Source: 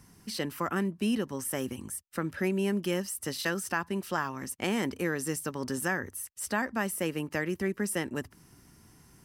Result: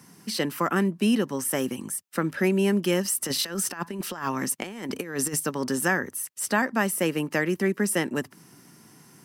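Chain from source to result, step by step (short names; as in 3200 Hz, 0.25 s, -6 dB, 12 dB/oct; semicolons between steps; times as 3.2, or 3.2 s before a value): HPF 140 Hz 24 dB/oct; 3.05–5.4 negative-ratio compressor -35 dBFS, ratio -0.5; gain +6.5 dB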